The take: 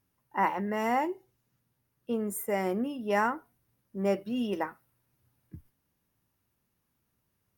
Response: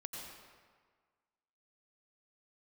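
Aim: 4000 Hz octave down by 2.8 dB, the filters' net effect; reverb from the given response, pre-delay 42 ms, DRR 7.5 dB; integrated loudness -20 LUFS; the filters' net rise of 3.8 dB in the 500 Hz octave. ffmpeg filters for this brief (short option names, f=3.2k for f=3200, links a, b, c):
-filter_complex "[0:a]equalizer=f=500:t=o:g=5,equalizer=f=4k:t=o:g=-5,asplit=2[a][b];[1:a]atrim=start_sample=2205,adelay=42[c];[b][c]afir=irnorm=-1:irlink=0,volume=-5.5dB[d];[a][d]amix=inputs=2:normalize=0,volume=8.5dB"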